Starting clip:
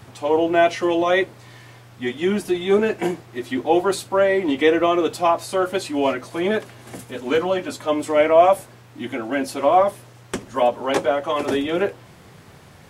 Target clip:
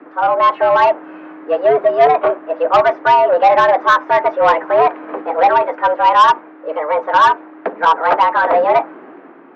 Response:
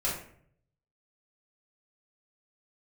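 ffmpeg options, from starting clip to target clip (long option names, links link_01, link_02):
-af "lowpass=frequency=1200:width=0.5412,lowpass=frequency=1200:width=1.3066,dynaudnorm=framelen=190:gausssize=9:maxgain=11.5dB,asetrate=59535,aresample=44100,afreqshift=150,acontrast=78,volume=-2dB"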